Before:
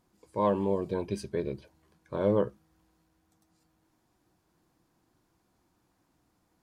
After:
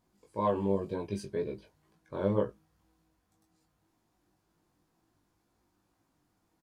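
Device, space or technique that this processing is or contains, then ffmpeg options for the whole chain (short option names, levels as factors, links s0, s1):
double-tracked vocal: -filter_complex "[0:a]asplit=2[s0][s1];[s1]adelay=21,volume=0.224[s2];[s0][s2]amix=inputs=2:normalize=0,flanger=delay=18:depth=2.4:speed=2"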